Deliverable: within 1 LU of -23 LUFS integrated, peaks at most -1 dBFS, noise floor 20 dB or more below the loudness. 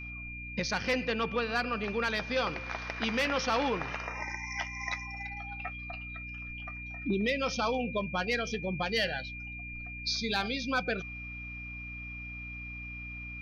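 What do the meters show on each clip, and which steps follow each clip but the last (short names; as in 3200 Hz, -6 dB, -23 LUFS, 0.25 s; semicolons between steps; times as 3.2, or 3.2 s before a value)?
hum 60 Hz; harmonics up to 300 Hz; hum level -43 dBFS; steady tone 2400 Hz; tone level -41 dBFS; loudness -33.5 LUFS; peak -20.0 dBFS; loudness target -23.0 LUFS
-> notches 60/120/180/240/300 Hz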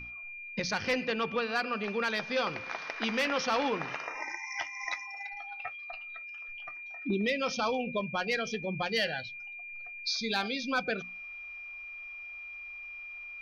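hum none; steady tone 2400 Hz; tone level -41 dBFS
-> notch 2400 Hz, Q 30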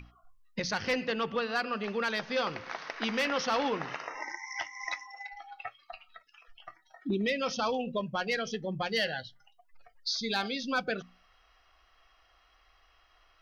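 steady tone none; loudness -33.0 LUFS; peak -20.5 dBFS; loudness target -23.0 LUFS
-> gain +10 dB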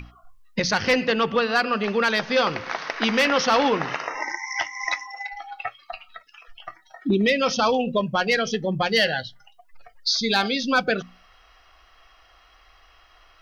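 loudness -23.0 LUFS; peak -10.5 dBFS; noise floor -56 dBFS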